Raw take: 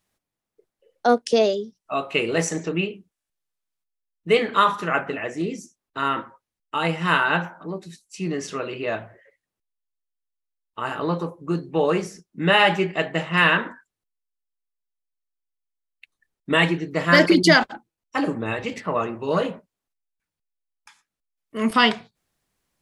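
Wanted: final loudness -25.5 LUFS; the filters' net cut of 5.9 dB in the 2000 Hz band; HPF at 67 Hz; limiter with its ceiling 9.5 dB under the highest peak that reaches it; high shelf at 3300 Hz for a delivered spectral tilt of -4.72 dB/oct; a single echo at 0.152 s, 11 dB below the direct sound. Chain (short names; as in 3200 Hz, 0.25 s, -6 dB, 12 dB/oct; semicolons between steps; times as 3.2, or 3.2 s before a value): HPF 67 Hz; bell 2000 Hz -5 dB; high shelf 3300 Hz -8.5 dB; limiter -13.5 dBFS; echo 0.152 s -11 dB; gain +1 dB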